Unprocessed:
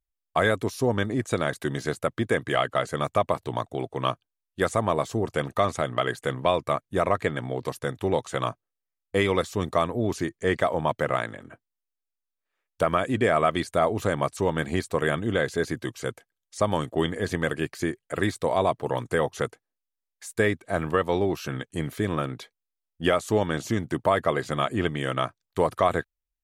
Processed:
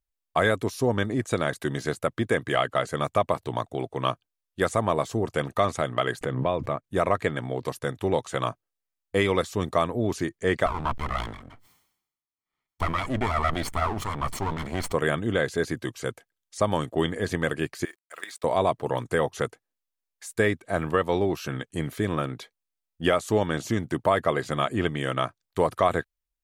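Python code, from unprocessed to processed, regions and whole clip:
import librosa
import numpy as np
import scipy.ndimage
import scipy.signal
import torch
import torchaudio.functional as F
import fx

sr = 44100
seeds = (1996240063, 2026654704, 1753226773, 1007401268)

y = fx.chain(x, sr, fx.lowpass(hz=1300.0, slope=6),
    fx.peak_eq(hz=930.0, db=-3.0, octaves=2.5),
    fx.pre_swell(db_per_s=51.0), at=(6.21, 6.84))
y = fx.chain(y, sr, fx.lower_of_two(delay_ms=0.94),
    fx.high_shelf(hz=3100.0, db=-6.5),
    fx.sustainer(db_per_s=75.0), at=(10.66, 14.93))
y = fx.chain(y, sr, fx.highpass(hz=1000.0, slope=12),
    fx.level_steps(step_db=14),
    fx.quant_companded(bits=6), at=(17.85, 18.44))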